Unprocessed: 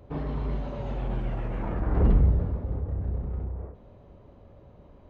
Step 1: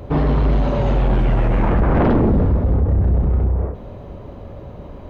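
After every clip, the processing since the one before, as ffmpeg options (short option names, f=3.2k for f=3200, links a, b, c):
-af "aeval=exprs='0.282*sin(PI/2*4.47*val(0)/0.282)':c=same"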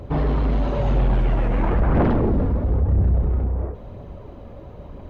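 -af "aphaser=in_gain=1:out_gain=1:delay=4.4:decay=0.29:speed=1:type=triangular,volume=-4.5dB"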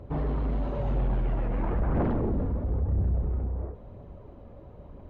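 -af "highshelf=f=2.5k:g=-9,volume=-8dB"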